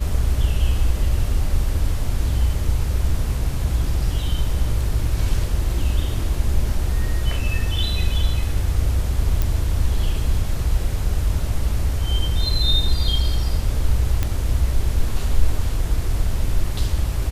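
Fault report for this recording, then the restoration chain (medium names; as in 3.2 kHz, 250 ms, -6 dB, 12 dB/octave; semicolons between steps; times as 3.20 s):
9.42 s: pop
14.23 s: pop -8 dBFS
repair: de-click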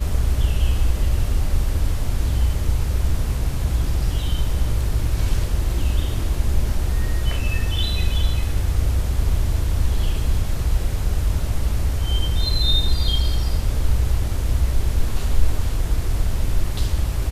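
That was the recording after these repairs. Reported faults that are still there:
nothing left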